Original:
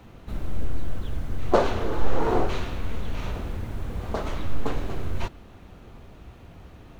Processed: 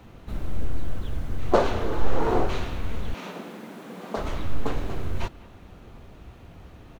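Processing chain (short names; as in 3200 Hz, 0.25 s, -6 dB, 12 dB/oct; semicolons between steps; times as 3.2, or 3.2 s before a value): 3.14–4.17 steep high-pass 170 Hz 48 dB/oct; speakerphone echo 0.2 s, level -20 dB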